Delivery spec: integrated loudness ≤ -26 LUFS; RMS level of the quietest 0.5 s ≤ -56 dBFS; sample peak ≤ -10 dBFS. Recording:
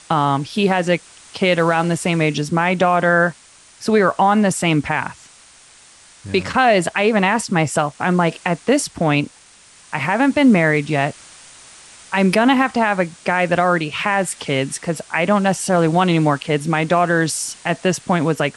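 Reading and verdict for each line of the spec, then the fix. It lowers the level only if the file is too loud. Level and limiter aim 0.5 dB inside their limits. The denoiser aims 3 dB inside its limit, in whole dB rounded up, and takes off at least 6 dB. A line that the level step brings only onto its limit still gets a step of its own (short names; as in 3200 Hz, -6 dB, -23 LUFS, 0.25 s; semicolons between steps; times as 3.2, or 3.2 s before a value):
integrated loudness -17.5 LUFS: fail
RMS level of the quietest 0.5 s -47 dBFS: fail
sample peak -5.0 dBFS: fail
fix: denoiser 6 dB, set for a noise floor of -47 dBFS; gain -9 dB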